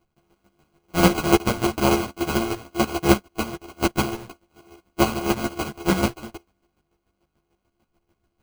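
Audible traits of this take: a buzz of ramps at a fixed pitch in blocks of 128 samples; chopped level 6.8 Hz, depth 65%, duty 25%; aliases and images of a low sample rate 1.8 kHz, jitter 0%; a shimmering, thickened sound

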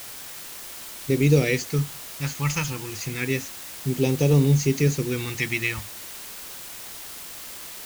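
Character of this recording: phasing stages 2, 0.3 Hz, lowest notch 430–1500 Hz; a quantiser's noise floor 6-bit, dither triangular

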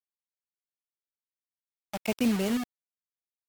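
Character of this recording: random-step tremolo 3.5 Hz, depth 55%; a quantiser's noise floor 6-bit, dither none; MP3

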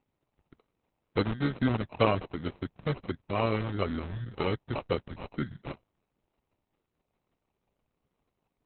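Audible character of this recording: phasing stages 2, 2.1 Hz, lowest notch 510–3500 Hz; aliases and images of a low sample rate 1.7 kHz, jitter 0%; Opus

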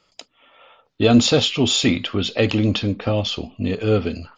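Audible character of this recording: noise floor -65 dBFS; spectral tilt -5.0 dB/octave

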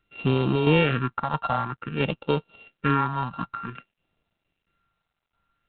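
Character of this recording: a buzz of ramps at a fixed pitch in blocks of 32 samples; tremolo saw down 1.5 Hz, depth 50%; phasing stages 4, 0.53 Hz, lowest notch 370–1800 Hz; G.726

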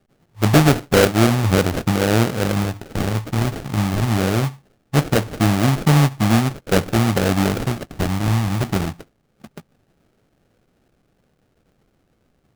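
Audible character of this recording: phasing stages 12, 0.21 Hz, lowest notch 480–1400 Hz; aliases and images of a low sample rate 1 kHz, jitter 20%

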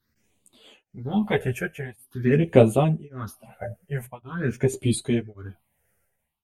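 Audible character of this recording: phasing stages 6, 0.46 Hz, lowest notch 270–1600 Hz; tremolo triangle 0.89 Hz, depth 100%; a shimmering, thickened sound

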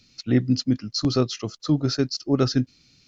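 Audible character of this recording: noise floor -60 dBFS; spectral tilt -6.0 dB/octave

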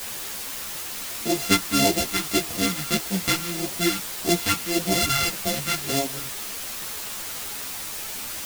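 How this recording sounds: a buzz of ramps at a fixed pitch in blocks of 64 samples; phasing stages 2, 1.7 Hz, lowest notch 590–1300 Hz; a quantiser's noise floor 6-bit, dither triangular; a shimmering, thickened sound

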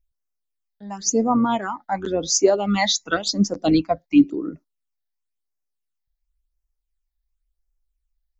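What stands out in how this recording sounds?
phasing stages 8, 0.94 Hz, lowest notch 340–3600 Hz

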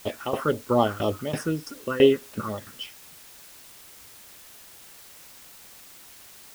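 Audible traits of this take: phasing stages 4, 4 Hz, lowest notch 610–1500 Hz; tremolo saw down 3 Hz, depth 90%; a quantiser's noise floor 10-bit, dither triangular

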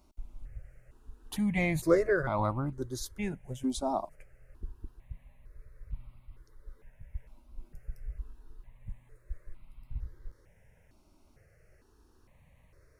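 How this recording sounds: notches that jump at a steady rate 2.2 Hz 480–1700 Hz

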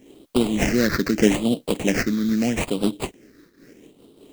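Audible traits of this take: aliases and images of a low sample rate 3.5 kHz, jitter 20%; phasing stages 6, 0.79 Hz, lowest notch 760–1800 Hz; a quantiser's noise floor 12-bit, dither triangular; random flutter of the level

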